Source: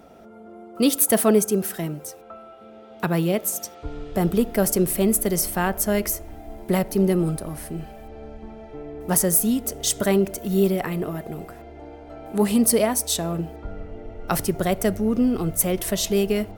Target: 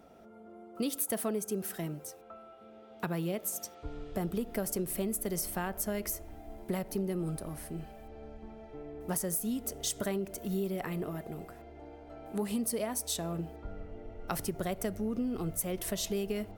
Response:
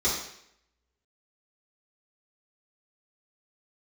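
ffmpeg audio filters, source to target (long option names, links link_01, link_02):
-af "acompressor=threshold=-21dB:ratio=6,volume=-8.5dB"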